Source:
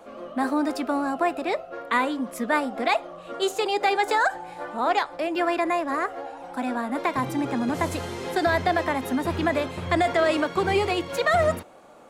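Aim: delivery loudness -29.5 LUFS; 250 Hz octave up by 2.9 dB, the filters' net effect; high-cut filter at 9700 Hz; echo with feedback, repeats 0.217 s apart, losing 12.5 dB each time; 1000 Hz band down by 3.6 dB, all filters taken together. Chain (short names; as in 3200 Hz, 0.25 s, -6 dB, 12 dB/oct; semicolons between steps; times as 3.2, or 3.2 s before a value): LPF 9700 Hz; bell 250 Hz +4 dB; bell 1000 Hz -5.5 dB; feedback echo 0.217 s, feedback 24%, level -12.5 dB; gain -4 dB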